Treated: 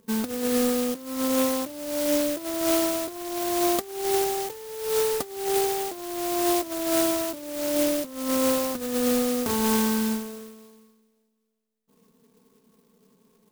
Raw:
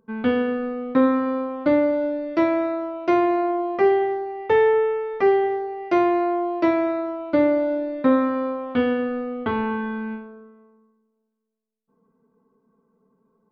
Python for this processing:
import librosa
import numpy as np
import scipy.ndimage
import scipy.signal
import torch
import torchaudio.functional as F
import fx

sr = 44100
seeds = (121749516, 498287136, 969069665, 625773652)

y = fx.over_compress(x, sr, threshold_db=-25.0, ratio=-0.5)
y = fx.clock_jitter(y, sr, seeds[0], jitter_ms=0.14)